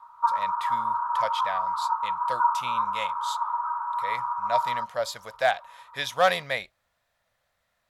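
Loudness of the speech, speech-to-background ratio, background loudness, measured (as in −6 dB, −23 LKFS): −30.5 LKFS, −3.5 dB, −27.0 LKFS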